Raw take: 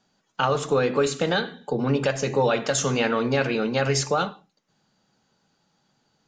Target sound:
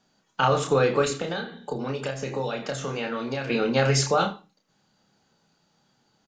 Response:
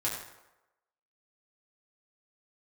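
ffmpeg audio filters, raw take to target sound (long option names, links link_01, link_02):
-filter_complex "[0:a]asettb=1/sr,asplit=3[link_01][link_02][link_03];[link_01]atrim=end=1.104[link_04];[link_02]atrim=start=1.1:end=3.5,asetpts=PTS-STARTPTS,afade=type=in:duration=0.004:curve=qsin,afade=type=out:start_time=2.396:duration=0.004:curve=qsin,acrossover=split=300|3200[link_05][link_06][link_07];[link_05]acompressor=threshold=-38dB:ratio=4[link_08];[link_06]acompressor=threshold=-31dB:ratio=4[link_09];[link_07]acompressor=threshold=-45dB:ratio=4[link_10];[link_08][link_09][link_10]amix=inputs=3:normalize=0[link_11];[link_03]atrim=start=3.496[link_12];[link_04][link_11]acrossfade=duration=0.004:curve1=hsin:curve2=qsin[link_13];[link_13][link_12]acrossfade=duration=0.004:curve1=qsin:curve2=hsin,aecho=1:1:30|80:0.562|0.15"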